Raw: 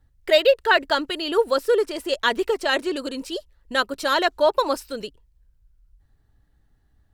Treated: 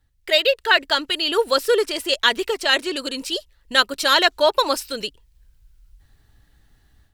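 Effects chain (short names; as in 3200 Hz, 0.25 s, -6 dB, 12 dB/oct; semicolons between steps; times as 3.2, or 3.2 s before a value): high shelf 4500 Hz +8.5 dB; AGC gain up to 11 dB; bell 2900 Hz +7 dB 2.1 oct; gain -5.5 dB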